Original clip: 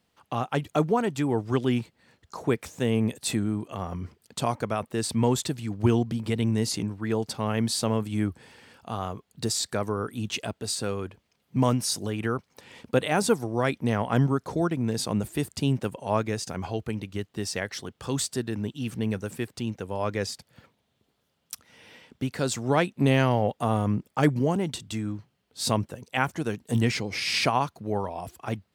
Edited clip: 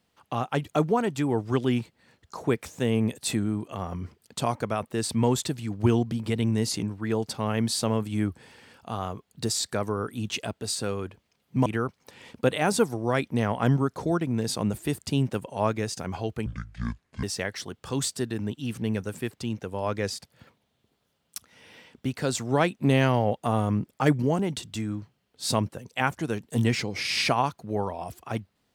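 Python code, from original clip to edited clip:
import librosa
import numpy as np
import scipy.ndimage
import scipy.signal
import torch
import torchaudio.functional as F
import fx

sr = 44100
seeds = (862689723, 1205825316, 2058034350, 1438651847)

y = fx.edit(x, sr, fx.cut(start_s=11.66, length_s=0.5),
    fx.speed_span(start_s=16.96, length_s=0.44, speed=0.57), tone=tone)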